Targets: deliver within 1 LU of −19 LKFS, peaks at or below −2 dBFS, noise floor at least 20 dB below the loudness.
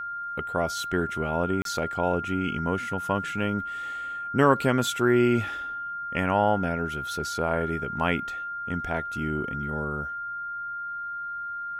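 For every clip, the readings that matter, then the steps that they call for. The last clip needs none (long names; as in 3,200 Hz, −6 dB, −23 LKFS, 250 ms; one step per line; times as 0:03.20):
number of dropouts 1; longest dropout 32 ms; interfering tone 1,400 Hz; level of the tone −31 dBFS; integrated loudness −27.5 LKFS; sample peak −6.0 dBFS; target loudness −19.0 LKFS
→ repair the gap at 0:01.62, 32 ms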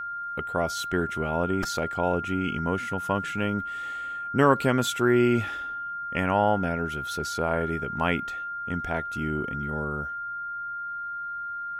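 number of dropouts 0; interfering tone 1,400 Hz; level of the tone −31 dBFS
→ notch filter 1,400 Hz, Q 30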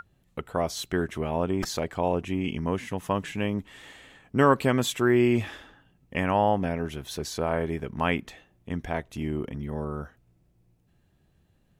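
interfering tone none found; integrated loudness −27.5 LKFS; sample peak −6.5 dBFS; target loudness −19.0 LKFS
→ level +8.5 dB
brickwall limiter −2 dBFS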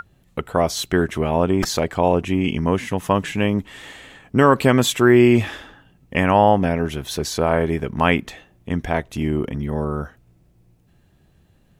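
integrated loudness −19.5 LKFS; sample peak −2.0 dBFS; background noise floor −58 dBFS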